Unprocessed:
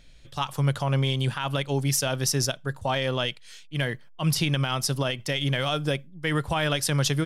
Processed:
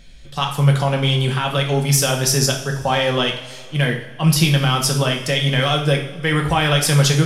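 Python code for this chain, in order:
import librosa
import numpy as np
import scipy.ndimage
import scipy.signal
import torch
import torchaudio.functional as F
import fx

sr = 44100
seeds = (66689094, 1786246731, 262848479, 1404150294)

y = fx.rev_double_slope(x, sr, seeds[0], early_s=0.57, late_s=2.8, knee_db=-19, drr_db=1.0)
y = F.gain(torch.from_numpy(y), 6.0).numpy()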